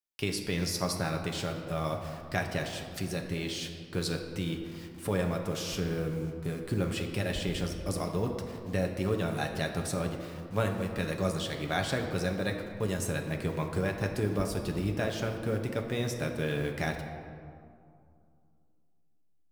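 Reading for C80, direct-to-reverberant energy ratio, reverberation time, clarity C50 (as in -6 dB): 7.0 dB, 2.0 dB, 2.4 s, 5.5 dB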